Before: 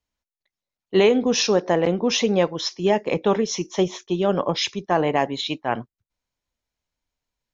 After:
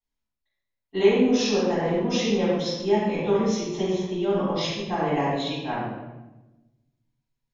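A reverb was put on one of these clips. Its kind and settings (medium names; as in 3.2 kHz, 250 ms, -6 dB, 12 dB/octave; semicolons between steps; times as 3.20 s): simulated room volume 510 m³, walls mixed, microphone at 8.9 m; trim -20 dB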